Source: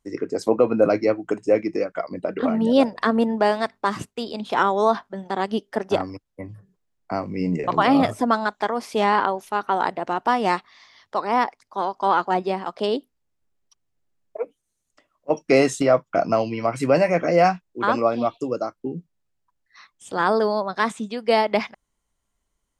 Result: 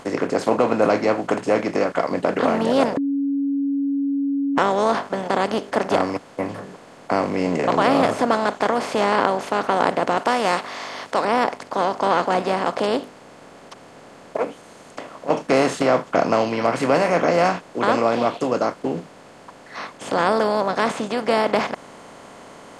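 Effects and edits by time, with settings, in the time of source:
2.97–4.58 s: bleep 279 Hz -16 dBFS
10.17–11.25 s: tilt EQ +3 dB/octave
whole clip: spectral levelling over time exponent 0.4; trim -5.5 dB

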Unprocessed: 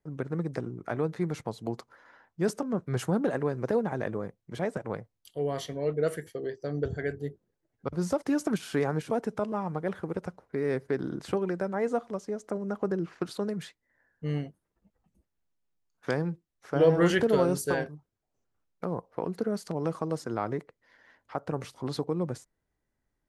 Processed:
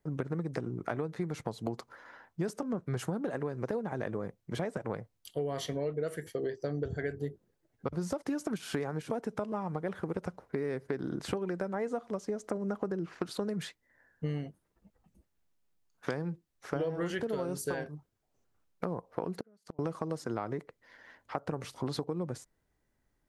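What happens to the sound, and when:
19.39–19.79 s: inverted gate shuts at -26 dBFS, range -37 dB
whole clip: compression 12:1, threshold -34 dBFS; trim +4 dB

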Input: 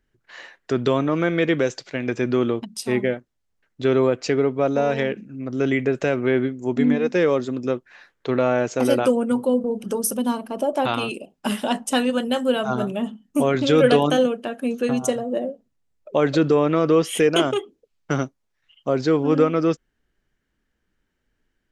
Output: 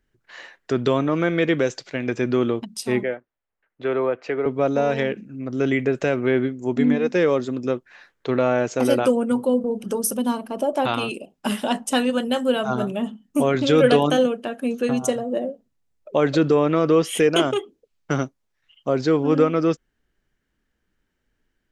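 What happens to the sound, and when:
3.03–4.46 s: three-band isolator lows -12 dB, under 400 Hz, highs -23 dB, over 2.8 kHz

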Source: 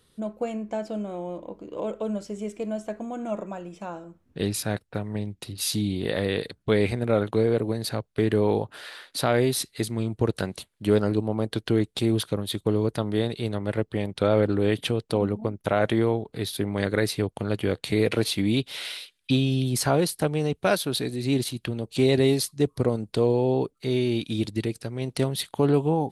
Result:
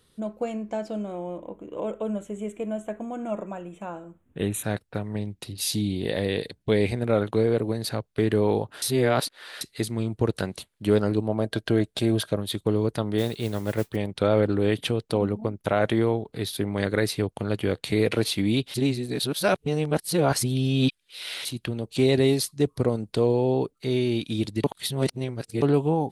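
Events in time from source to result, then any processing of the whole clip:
1.12–4.64 s: Butterworth band-stop 4.9 kHz, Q 1.5
5.47–6.95 s: peaking EQ 1.3 kHz -8 dB 0.53 oct
8.82–9.61 s: reverse
11.28–12.36 s: small resonant body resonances 630/1600 Hz, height 9 dB -> 12 dB
13.18–13.96 s: modulation noise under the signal 21 dB
18.74–21.45 s: reverse
24.64–25.62 s: reverse

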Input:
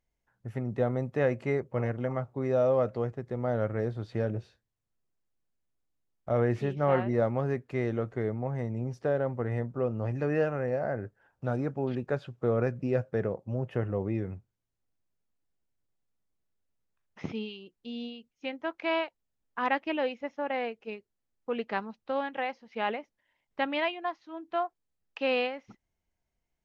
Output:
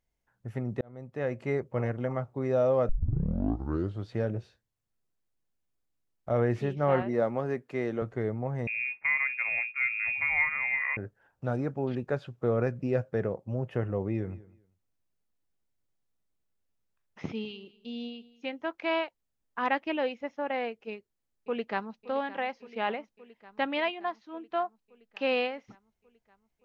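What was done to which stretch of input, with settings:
0.81–1.60 s: fade in
2.89 s: tape start 1.19 s
7.02–8.02 s: high-pass 180 Hz
8.67–10.97 s: frequency inversion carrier 2.6 kHz
14.00–18.65 s: feedback delay 198 ms, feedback 21%, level -20 dB
20.89–22.00 s: echo throw 570 ms, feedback 75%, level -16 dB

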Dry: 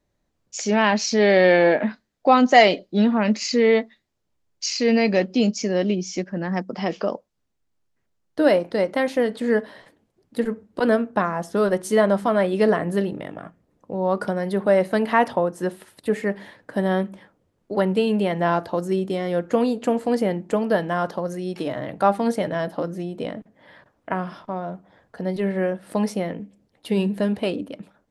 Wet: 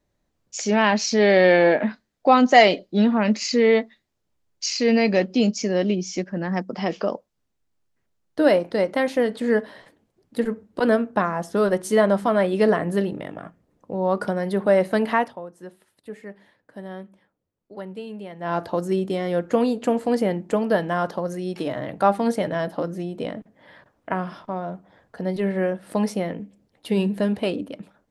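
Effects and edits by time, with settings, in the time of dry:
15.10–18.63 s: dip -14.5 dB, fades 0.23 s

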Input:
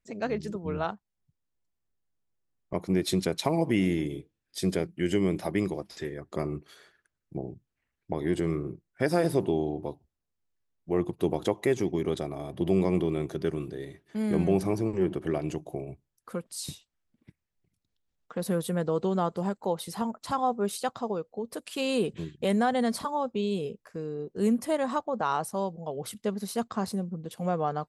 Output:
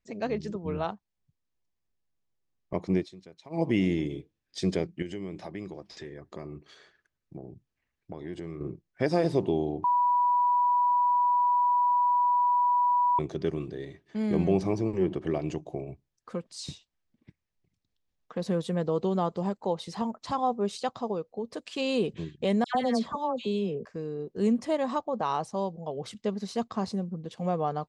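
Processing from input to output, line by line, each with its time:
2.97–3.62 s: dip -22 dB, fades 0.12 s
5.02–8.61 s: compression 2:1, threshold -42 dBFS
9.84–13.19 s: bleep 979 Hz -20 dBFS
22.64–23.85 s: phase dispersion lows, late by 109 ms, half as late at 1.8 kHz
whole clip: low-pass 6.8 kHz 24 dB/octave; band-stop 1.4 kHz, Q 14; dynamic bell 1.6 kHz, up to -4 dB, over -47 dBFS, Q 2.5

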